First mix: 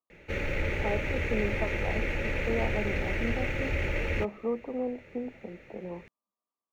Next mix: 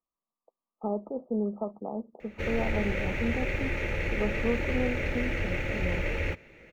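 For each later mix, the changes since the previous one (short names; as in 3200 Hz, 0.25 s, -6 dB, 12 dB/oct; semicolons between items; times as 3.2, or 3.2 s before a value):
speech: remove HPF 250 Hz; background: entry +2.10 s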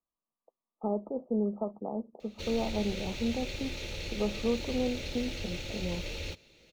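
background -8.5 dB; master: add resonant high shelf 2800 Hz +13 dB, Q 3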